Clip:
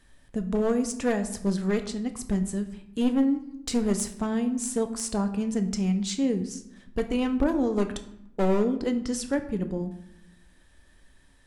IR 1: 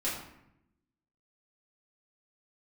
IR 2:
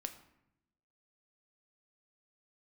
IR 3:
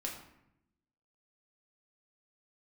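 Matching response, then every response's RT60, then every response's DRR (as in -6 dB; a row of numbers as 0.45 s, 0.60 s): 2; 0.80 s, 0.80 s, 0.80 s; -9.0 dB, 7.0 dB, -2.0 dB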